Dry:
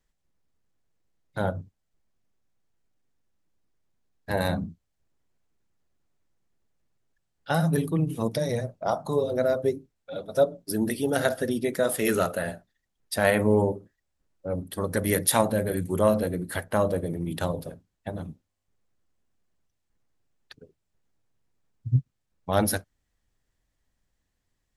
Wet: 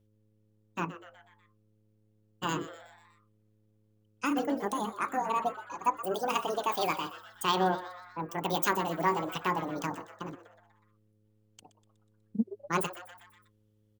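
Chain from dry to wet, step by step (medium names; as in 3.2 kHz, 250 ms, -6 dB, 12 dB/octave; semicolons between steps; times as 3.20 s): frequency-shifting echo 217 ms, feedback 54%, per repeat +100 Hz, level -14.5 dB; hum 60 Hz, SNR 34 dB; wide varispeed 1.77×; trim -5.5 dB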